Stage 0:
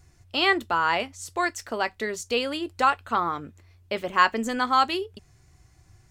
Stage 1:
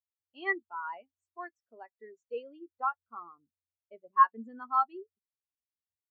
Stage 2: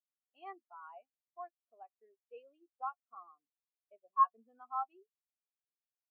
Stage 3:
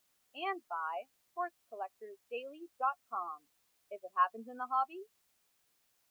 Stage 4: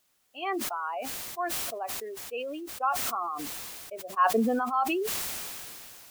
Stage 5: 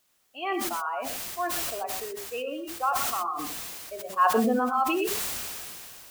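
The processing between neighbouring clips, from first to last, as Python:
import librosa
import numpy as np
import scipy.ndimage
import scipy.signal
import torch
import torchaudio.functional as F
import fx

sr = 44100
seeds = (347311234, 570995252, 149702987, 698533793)

y1 = fx.spectral_expand(x, sr, expansion=2.5)
y1 = F.gain(torch.from_numpy(y1), -6.0).numpy()
y2 = fx.vowel_filter(y1, sr, vowel='a')
y3 = fx.spectral_comp(y2, sr, ratio=2.0)
y4 = fx.sustainer(y3, sr, db_per_s=21.0)
y4 = F.gain(torch.from_numpy(y4), 4.5).numpy()
y5 = fx.rev_gated(y4, sr, seeds[0], gate_ms=140, shape='rising', drr_db=5.5)
y5 = F.gain(torch.from_numpy(y5), 1.0).numpy()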